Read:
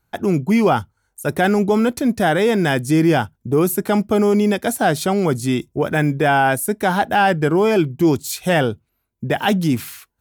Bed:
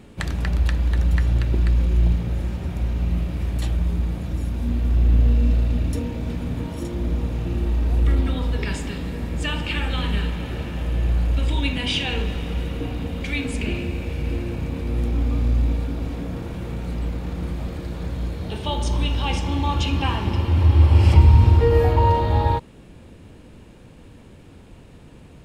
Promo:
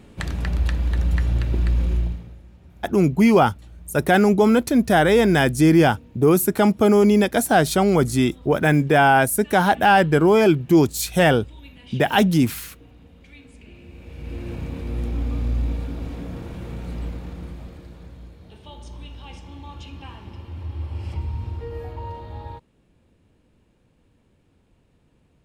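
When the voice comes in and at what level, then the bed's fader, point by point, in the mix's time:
2.70 s, +0.5 dB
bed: 1.93 s -1.5 dB
2.42 s -21 dB
13.69 s -21 dB
14.51 s -3.5 dB
17.04 s -3.5 dB
18.37 s -16.5 dB

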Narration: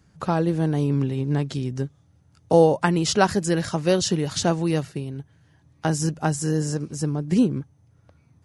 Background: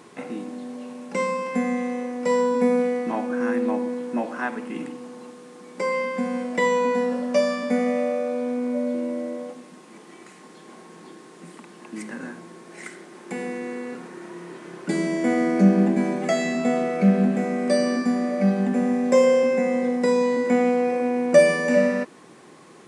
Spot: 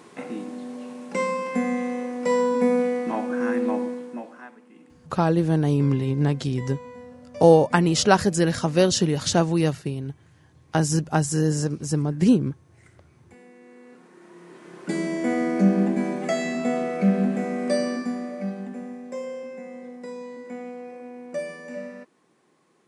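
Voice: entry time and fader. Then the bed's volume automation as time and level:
4.90 s, +1.5 dB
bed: 3.83 s -0.5 dB
4.6 s -19.5 dB
13.52 s -19.5 dB
14.9 s -2.5 dB
17.75 s -2.5 dB
19.09 s -16.5 dB

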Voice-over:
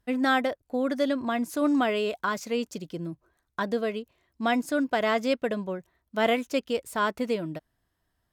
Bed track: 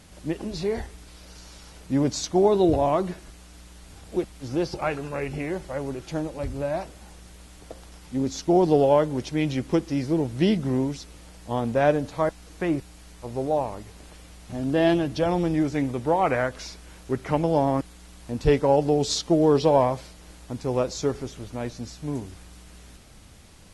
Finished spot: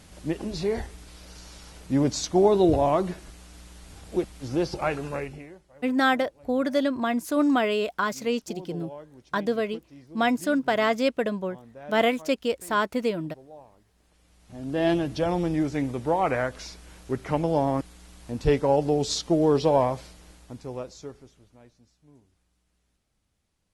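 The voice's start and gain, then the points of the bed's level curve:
5.75 s, +2.0 dB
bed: 5.15 s 0 dB
5.64 s -22.5 dB
13.88 s -22.5 dB
14.91 s -2 dB
20.14 s -2 dB
21.91 s -26 dB

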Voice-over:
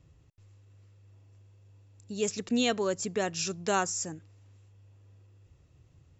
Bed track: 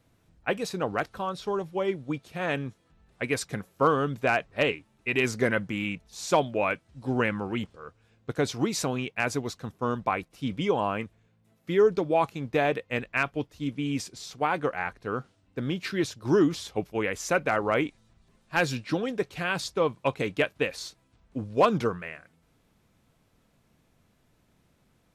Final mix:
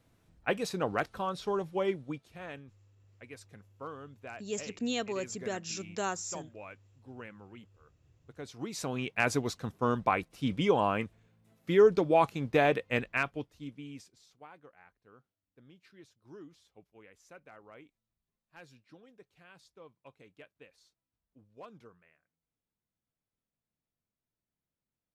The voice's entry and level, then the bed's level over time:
2.30 s, -6.0 dB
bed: 1.88 s -2.5 dB
2.76 s -20.5 dB
8.29 s -20.5 dB
9.14 s -0.5 dB
12.99 s -0.5 dB
14.62 s -28 dB

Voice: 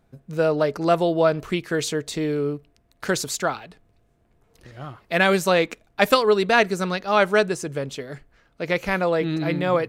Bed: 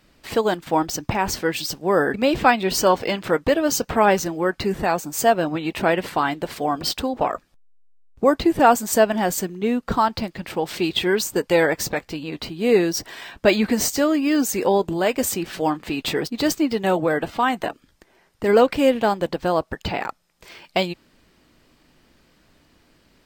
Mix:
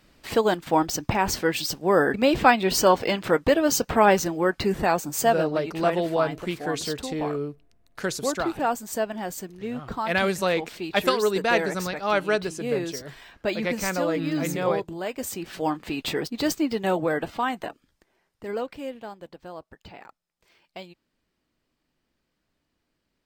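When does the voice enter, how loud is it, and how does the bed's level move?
4.95 s, -5.0 dB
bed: 5.13 s -1 dB
5.67 s -10.5 dB
15.16 s -10.5 dB
15.68 s -4 dB
17.21 s -4 dB
19.07 s -19 dB

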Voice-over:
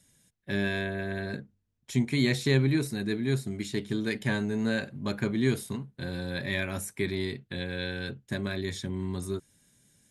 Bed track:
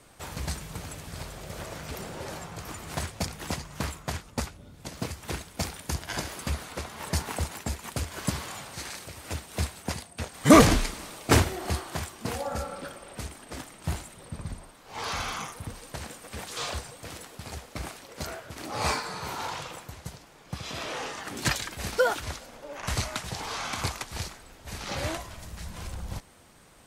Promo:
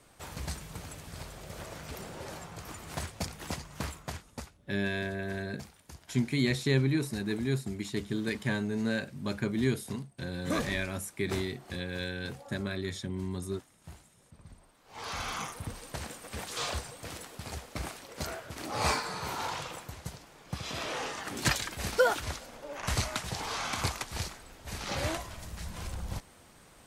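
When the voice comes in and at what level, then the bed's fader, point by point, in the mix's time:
4.20 s, -2.5 dB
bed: 3.99 s -4.5 dB
4.81 s -18 dB
14.31 s -18 dB
15.42 s -1 dB

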